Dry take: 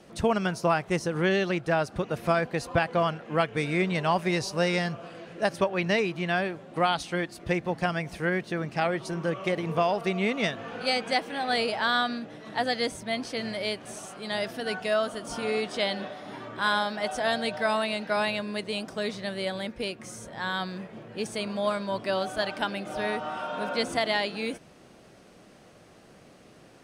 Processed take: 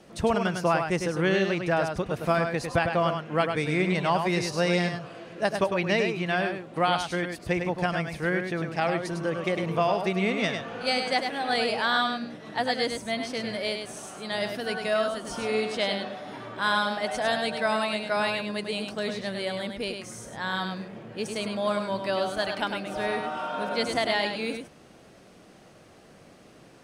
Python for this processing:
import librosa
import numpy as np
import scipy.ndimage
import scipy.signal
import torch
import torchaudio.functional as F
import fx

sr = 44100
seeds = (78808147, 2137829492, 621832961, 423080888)

y = x + 10.0 ** (-6.0 / 20.0) * np.pad(x, (int(102 * sr / 1000.0), 0))[:len(x)]